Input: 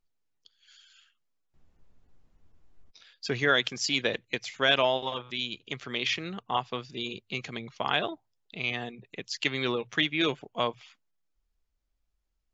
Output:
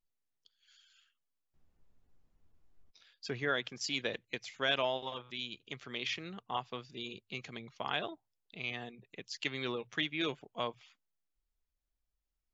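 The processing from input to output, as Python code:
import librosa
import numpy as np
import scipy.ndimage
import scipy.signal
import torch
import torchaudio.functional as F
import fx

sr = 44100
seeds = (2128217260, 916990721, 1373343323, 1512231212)

y = fx.high_shelf(x, sr, hz=4300.0, db=-11.5, at=(3.31, 3.81))
y = y * librosa.db_to_amplitude(-8.0)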